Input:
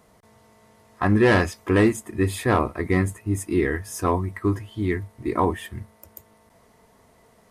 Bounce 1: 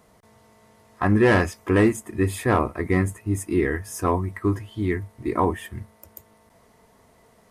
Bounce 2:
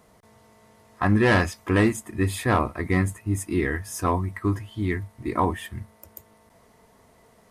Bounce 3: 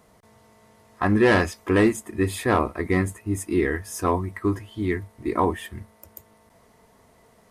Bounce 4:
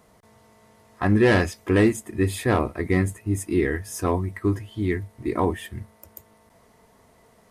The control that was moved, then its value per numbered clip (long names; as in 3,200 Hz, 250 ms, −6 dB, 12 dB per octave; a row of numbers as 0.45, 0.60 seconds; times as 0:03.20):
dynamic equaliser, frequency: 4,000, 410, 120, 1,100 Hertz